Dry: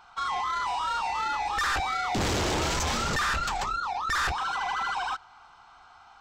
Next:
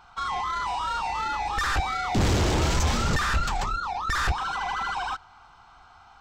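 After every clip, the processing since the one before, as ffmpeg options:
-af "lowshelf=f=230:g=10"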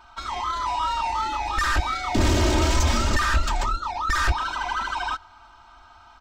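-af "aecho=1:1:3.2:0.92"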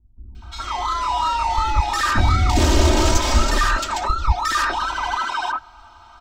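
-filter_complex "[0:a]acrossover=split=220|2000[s0][s1][s2];[s2]adelay=350[s3];[s1]adelay=420[s4];[s0][s4][s3]amix=inputs=3:normalize=0,volume=1.78"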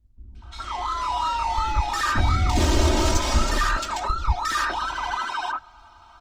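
-af "volume=0.631" -ar 48000 -c:a libopus -b:a 24k

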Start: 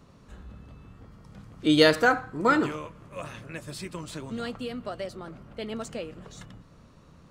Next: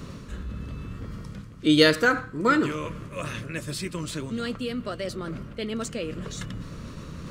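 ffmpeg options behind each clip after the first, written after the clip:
-af "equalizer=f=780:w=2.4:g=-12,areverse,acompressor=mode=upward:threshold=0.0447:ratio=2.5,areverse,volume=1.33"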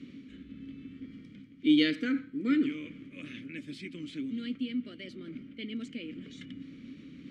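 -filter_complex "[0:a]asplit=3[s0][s1][s2];[s0]bandpass=f=270:t=q:w=8,volume=1[s3];[s1]bandpass=f=2290:t=q:w=8,volume=0.501[s4];[s2]bandpass=f=3010:t=q:w=8,volume=0.355[s5];[s3][s4][s5]amix=inputs=3:normalize=0,volume=1.58"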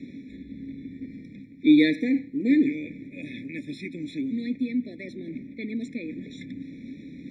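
-filter_complex "[0:a]acrossover=split=620[s0][s1];[s0]crystalizer=i=10:c=0[s2];[s2][s1]amix=inputs=2:normalize=0,afftfilt=real='re*eq(mod(floor(b*sr/1024/850),2),0)':imag='im*eq(mod(floor(b*sr/1024/850),2),0)':win_size=1024:overlap=0.75,volume=2"

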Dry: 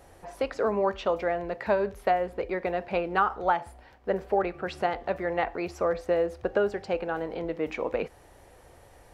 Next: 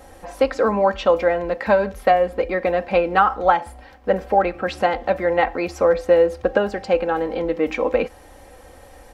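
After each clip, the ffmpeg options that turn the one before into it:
-af "aecho=1:1:3.8:0.59,volume=2.37"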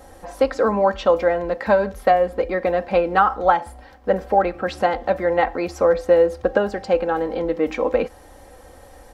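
-af "equalizer=f=2500:w=2.2:g=-4.5"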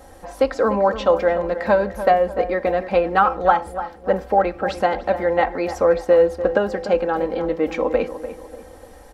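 -filter_complex "[0:a]asplit=2[s0][s1];[s1]adelay=295,lowpass=f=1800:p=1,volume=0.282,asplit=2[s2][s3];[s3]adelay=295,lowpass=f=1800:p=1,volume=0.43,asplit=2[s4][s5];[s5]adelay=295,lowpass=f=1800:p=1,volume=0.43,asplit=2[s6][s7];[s7]adelay=295,lowpass=f=1800:p=1,volume=0.43[s8];[s0][s2][s4][s6][s8]amix=inputs=5:normalize=0"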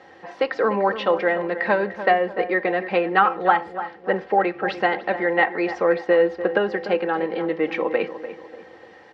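-af "highpass=f=130:w=0.5412,highpass=f=130:w=1.3066,equalizer=f=260:t=q:w=4:g=-9,equalizer=f=370:t=q:w=4:g=7,equalizer=f=570:t=q:w=4:g=-5,equalizer=f=1900:t=q:w=4:g=9,equalizer=f=2800:t=q:w=4:g=5,lowpass=f=4700:w=0.5412,lowpass=f=4700:w=1.3066,volume=0.841"

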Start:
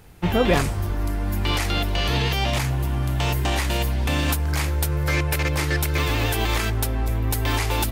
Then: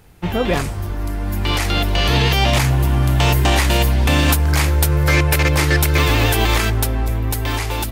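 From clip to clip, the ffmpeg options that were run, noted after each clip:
-af "dynaudnorm=f=340:g=9:m=3.55"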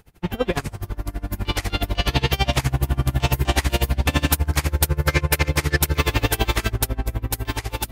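-af "aeval=exprs='val(0)*pow(10,-25*(0.5-0.5*cos(2*PI*12*n/s))/20)':c=same"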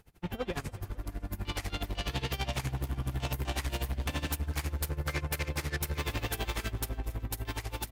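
-af "asoftclip=type=tanh:threshold=0.106,aecho=1:1:274|548|822|1096:0.0891|0.0508|0.029|0.0165,volume=0.398" -ar 48000 -c:a sbc -b:a 192k

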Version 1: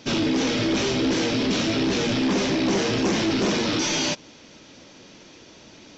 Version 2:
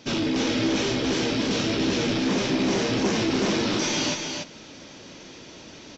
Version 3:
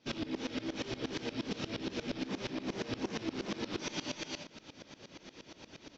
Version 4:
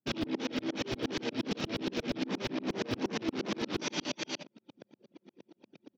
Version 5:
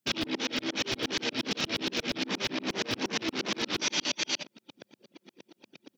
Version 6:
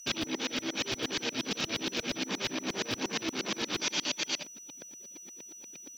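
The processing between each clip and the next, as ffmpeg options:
-af "areverse,acompressor=mode=upward:threshold=0.0178:ratio=2.5,areverse,aecho=1:1:289:0.562,volume=0.75"
-af "acompressor=threshold=0.0398:ratio=4,lowpass=5600,aeval=exprs='val(0)*pow(10,-20*if(lt(mod(-8.5*n/s,1),2*abs(-8.5)/1000),1-mod(-8.5*n/s,1)/(2*abs(-8.5)/1000),(mod(-8.5*n/s,1)-2*abs(-8.5)/1000)/(1-2*abs(-8.5)/1000))/20)':c=same,volume=0.794"
-filter_complex "[0:a]anlmdn=0.0631,acrossover=split=120[s0][s1];[s0]acrusher=bits=7:mix=0:aa=0.000001[s2];[s2][s1]amix=inputs=2:normalize=0,volume=1.58"
-filter_complex "[0:a]tiltshelf=f=1200:g=-6,asplit=2[s0][s1];[s1]alimiter=level_in=1.58:limit=0.0631:level=0:latency=1:release=59,volume=0.631,volume=1[s2];[s0][s2]amix=inputs=2:normalize=0"
-af "bandreject=f=2000:w=24,aeval=exprs='val(0)+0.00631*sin(2*PI*5900*n/s)':c=same,acrusher=bits=8:mix=0:aa=0.5,volume=0.794"

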